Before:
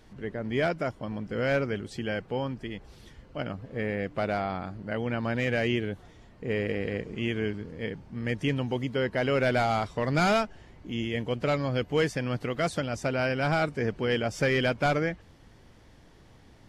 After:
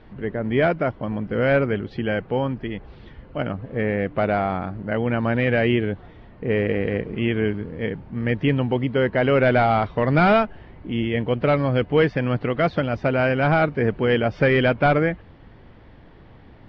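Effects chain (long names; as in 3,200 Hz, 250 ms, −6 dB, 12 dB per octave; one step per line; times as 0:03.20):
Bessel low-pass filter 2,400 Hz, order 8
level +8 dB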